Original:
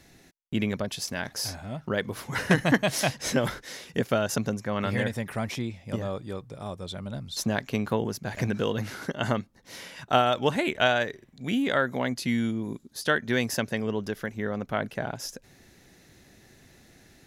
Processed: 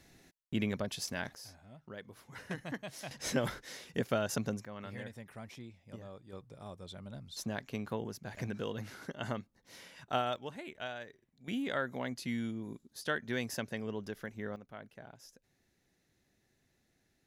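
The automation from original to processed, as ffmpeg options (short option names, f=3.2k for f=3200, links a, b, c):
-af "asetnsamples=n=441:p=0,asendcmd='1.35 volume volume -19dB;3.11 volume volume -7dB;4.65 volume volume -17dB;6.33 volume volume -11dB;10.36 volume volume -19dB;11.48 volume volume -10dB;14.56 volume volume -20dB',volume=-6dB"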